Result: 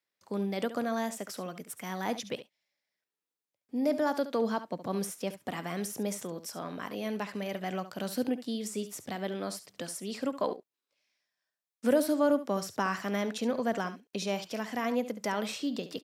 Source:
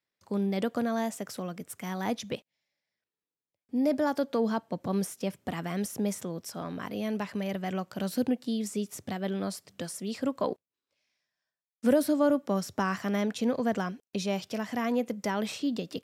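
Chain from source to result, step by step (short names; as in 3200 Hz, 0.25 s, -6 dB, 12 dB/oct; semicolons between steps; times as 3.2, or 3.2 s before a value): HPF 290 Hz 6 dB/oct; on a send: echo 70 ms -13 dB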